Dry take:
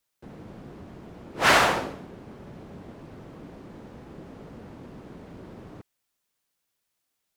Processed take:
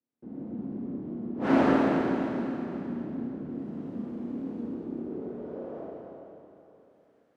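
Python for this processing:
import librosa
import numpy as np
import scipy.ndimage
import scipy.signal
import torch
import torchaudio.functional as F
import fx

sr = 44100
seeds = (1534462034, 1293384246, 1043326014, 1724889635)

y = fx.clip_1bit(x, sr, at=(3.5, 4.64))
y = fx.filter_sweep_bandpass(y, sr, from_hz=260.0, to_hz=1500.0, start_s=4.6, end_s=6.96, q=2.9)
y = fx.rev_schroeder(y, sr, rt60_s=3.2, comb_ms=26, drr_db=-7.0)
y = y * librosa.db_to_amplitude(6.0)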